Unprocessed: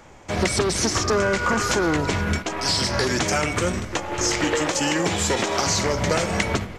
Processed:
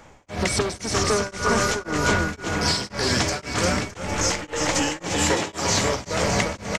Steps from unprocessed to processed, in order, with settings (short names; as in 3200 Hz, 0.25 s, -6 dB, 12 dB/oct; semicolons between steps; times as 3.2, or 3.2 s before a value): notch 360 Hz, Q 12; on a send: bouncing-ball echo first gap 0.35 s, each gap 0.75×, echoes 5; on the sum: beating tremolo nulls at 1.9 Hz